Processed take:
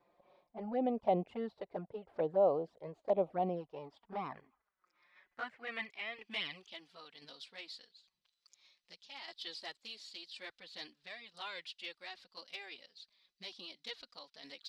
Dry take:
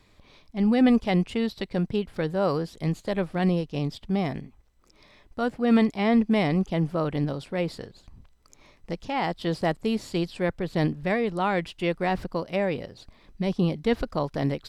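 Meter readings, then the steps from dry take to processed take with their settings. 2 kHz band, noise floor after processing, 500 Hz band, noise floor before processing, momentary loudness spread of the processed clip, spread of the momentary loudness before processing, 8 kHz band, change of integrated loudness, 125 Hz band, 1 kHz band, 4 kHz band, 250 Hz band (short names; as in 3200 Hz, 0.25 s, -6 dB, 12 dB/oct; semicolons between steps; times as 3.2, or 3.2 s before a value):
-12.0 dB, under -85 dBFS, -10.5 dB, -59 dBFS, 18 LU, 10 LU, n/a, -13.5 dB, -23.5 dB, -11.0 dB, -7.0 dB, -21.0 dB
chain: tremolo saw down 0.97 Hz, depth 55%; band-pass sweep 660 Hz -> 4100 Hz, 3.29–7; envelope flanger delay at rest 5.9 ms, full sweep at -31 dBFS; gain +3 dB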